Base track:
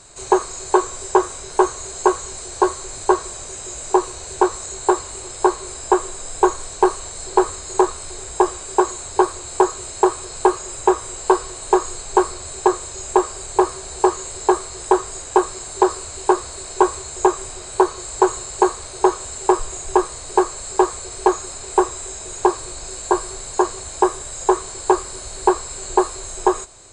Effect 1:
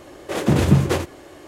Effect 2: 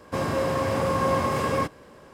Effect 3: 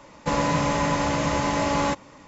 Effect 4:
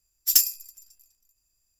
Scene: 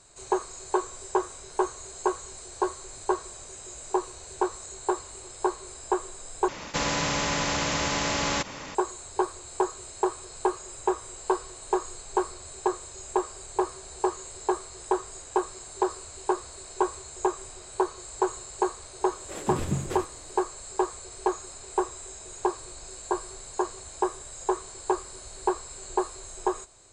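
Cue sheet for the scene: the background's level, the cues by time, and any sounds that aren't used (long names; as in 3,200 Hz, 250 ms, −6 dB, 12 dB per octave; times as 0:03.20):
base track −10.5 dB
0:06.48: overwrite with 3 −3.5 dB + every bin compressed towards the loudest bin 2 to 1
0:19.00: mix in 1 −14 dB
not used: 2, 4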